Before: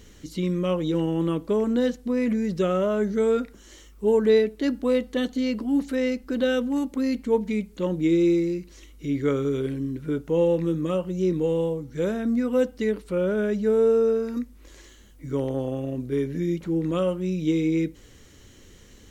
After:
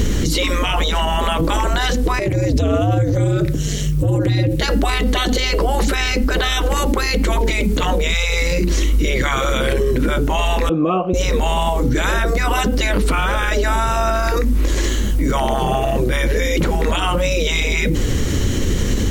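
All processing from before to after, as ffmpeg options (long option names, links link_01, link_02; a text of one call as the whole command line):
ffmpeg -i in.wav -filter_complex "[0:a]asettb=1/sr,asplit=3[link_01][link_02][link_03];[link_01]atrim=end=2.194[link_04];[link_02]atrim=start=2.19:end=4.61,asetpts=PTS-STARTPTS,afade=type=in:duration=0.004:curve=qsin,afade=type=out:start_time=2.416:duration=0.004:curve=qsin,equalizer=frequency=970:width=0.72:gain=-12,aeval=exprs='val(0)*sin(2*PI*100*n/s)':channel_layout=same,acompressor=threshold=-35dB:ratio=6:attack=3.2:release=140:knee=1:detection=peak[link_05];[link_03]atrim=start=4.606[link_06];[link_04][link_05]acrossfade=duration=0.004:curve1=hsin:curve2=qsin[link_07];[link_07][link_06]acrossfade=duration=0.004:curve1=qsin:curve2=hsin,asettb=1/sr,asplit=3[link_08][link_09][link_10];[link_08]atrim=end=10.694[link_11];[link_09]atrim=start=10.69:end=11.14,asetpts=PTS-STARTPTS,afade=type=in:duration=0.004:curve=qsin,afade=type=out:start_time=0.446:duration=0.004:curve=qsin,asplit=3[link_12][link_13][link_14];[link_12]bandpass=frequency=730:width_type=q:width=8,volume=0dB[link_15];[link_13]bandpass=frequency=1090:width_type=q:width=8,volume=-6dB[link_16];[link_14]bandpass=frequency=2440:width_type=q:width=8,volume=-9dB[link_17];[link_15][link_16][link_17]amix=inputs=3:normalize=0,highshelf=frequency=5500:gain=-10.5[link_18];[link_10]atrim=start=11.136[link_19];[link_11][link_18]acrossfade=duration=0.004:curve1=hsin:curve2=qsin[link_20];[link_20][link_19]acrossfade=duration=0.004:curve1=qsin:curve2=hsin,afftfilt=real='re*lt(hypot(re,im),0.0794)':imag='im*lt(hypot(re,im),0.0794)':win_size=1024:overlap=0.75,lowshelf=frequency=440:gain=9,alimiter=level_in=35dB:limit=-1dB:release=50:level=0:latency=1,volume=-8dB" out.wav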